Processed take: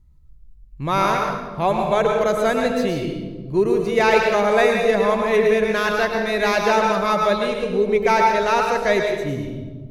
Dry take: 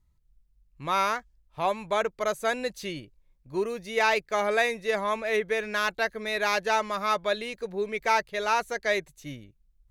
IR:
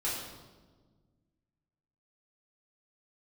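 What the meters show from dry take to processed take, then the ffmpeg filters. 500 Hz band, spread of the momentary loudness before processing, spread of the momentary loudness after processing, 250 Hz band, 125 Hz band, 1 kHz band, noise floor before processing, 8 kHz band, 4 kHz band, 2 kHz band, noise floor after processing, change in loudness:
+11.0 dB, 10 LU, 9 LU, +14.5 dB, +15.5 dB, +8.0 dB, -66 dBFS, +4.5 dB, +5.0 dB, +5.5 dB, -44 dBFS, +8.5 dB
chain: -filter_complex "[0:a]lowshelf=f=490:g=12,asplit=2[s0][s1];[1:a]atrim=start_sample=2205,adelay=104[s2];[s1][s2]afir=irnorm=-1:irlink=0,volume=0.447[s3];[s0][s3]amix=inputs=2:normalize=0,volume=1.33"

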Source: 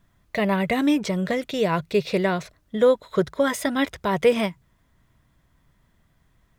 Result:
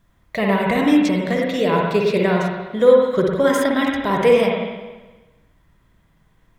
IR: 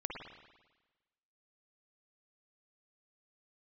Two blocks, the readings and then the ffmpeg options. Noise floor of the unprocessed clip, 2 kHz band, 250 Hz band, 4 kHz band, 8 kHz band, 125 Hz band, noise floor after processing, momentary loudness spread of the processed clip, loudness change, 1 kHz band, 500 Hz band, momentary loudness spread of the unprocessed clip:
-65 dBFS, +4.5 dB, +5.0 dB, +3.5 dB, +1.0 dB, +4.5 dB, -59 dBFS, 10 LU, +5.5 dB, +5.5 dB, +6.0 dB, 6 LU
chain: -filter_complex "[1:a]atrim=start_sample=2205[s0];[0:a][s0]afir=irnorm=-1:irlink=0,volume=1.58"

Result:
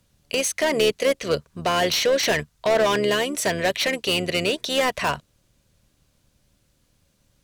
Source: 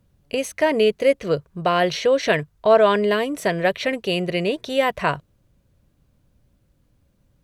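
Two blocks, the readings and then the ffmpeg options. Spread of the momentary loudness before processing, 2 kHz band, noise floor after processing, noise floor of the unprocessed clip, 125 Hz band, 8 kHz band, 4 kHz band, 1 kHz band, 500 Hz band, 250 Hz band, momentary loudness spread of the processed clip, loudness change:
8 LU, +0.5 dB, -66 dBFS, -64 dBFS, -3.0 dB, +10.0 dB, +5.0 dB, -3.0 dB, -3.5 dB, -3.5 dB, 6 LU, -1.5 dB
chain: -filter_complex "[0:a]equalizer=f=6400:w=0.35:g=11,acrossover=split=440[s0][s1];[s0]tremolo=f=76:d=0.824[s2];[s1]asoftclip=type=hard:threshold=0.112[s3];[s2][s3]amix=inputs=2:normalize=0"

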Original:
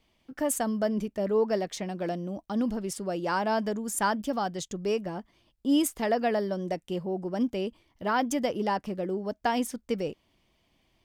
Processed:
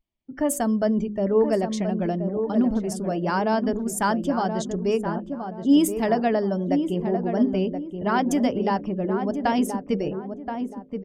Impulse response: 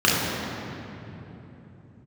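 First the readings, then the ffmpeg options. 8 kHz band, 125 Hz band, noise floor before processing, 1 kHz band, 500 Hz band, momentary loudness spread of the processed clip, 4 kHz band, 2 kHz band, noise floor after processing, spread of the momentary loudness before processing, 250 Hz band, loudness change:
+1.5 dB, +8.5 dB, -71 dBFS, +4.0 dB, +5.0 dB, 8 LU, +1.5 dB, +2.5 dB, -42 dBFS, 7 LU, +7.5 dB, +5.5 dB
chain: -filter_complex "[0:a]bandreject=f=500:w=12,bandreject=f=52.09:t=h:w=4,bandreject=f=104.18:t=h:w=4,bandreject=f=156.27:t=h:w=4,bandreject=f=208.36:t=h:w=4,bandreject=f=260.45:t=h:w=4,bandreject=f=312.54:t=h:w=4,bandreject=f=364.63:t=h:w=4,bandreject=f=416.72:t=h:w=4,bandreject=f=468.81:t=h:w=4,bandreject=f=520.9:t=h:w=4,bandreject=f=572.99:t=h:w=4,afftdn=nr=25:nf=-51,lowshelf=f=490:g=7.5,asplit=2[s0][s1];[s1]adelay=1026,lowpass=f=1200:p=1,volume=0.473,asplit=2[s2][s3];[s3]adelay=1026,lowpass=f=1200:p=1,volume=0.34,asplit=2[s4][s5];[s5]adelay=1026,lowpass=f=1200:p=1,volume=0.34,asplit=2[s6][s7];[s7]adelay=1026,lowpass=f=1200:p=1,volume=0.34[s8];[s2][s4][s6][s8]amix=inputs=4:normalize=0[s9];[s0][s9]amix=inputs=2:normalize=0,volume=1.19"

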